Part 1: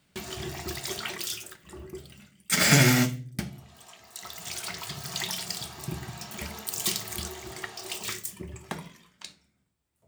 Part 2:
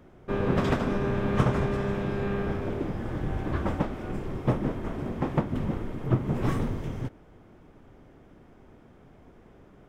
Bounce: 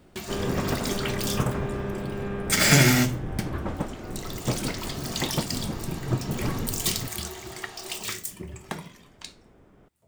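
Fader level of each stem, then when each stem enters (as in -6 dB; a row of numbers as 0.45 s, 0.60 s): +1.5 dB, -2.5 dB; 0.00 s, 0.00 s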